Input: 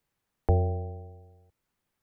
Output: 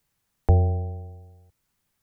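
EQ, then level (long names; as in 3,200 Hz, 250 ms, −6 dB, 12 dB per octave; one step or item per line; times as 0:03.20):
bass and treble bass +12 dB, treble +5 dB
low-shelf EQ 410 Hz −10 dB
+4.0 dB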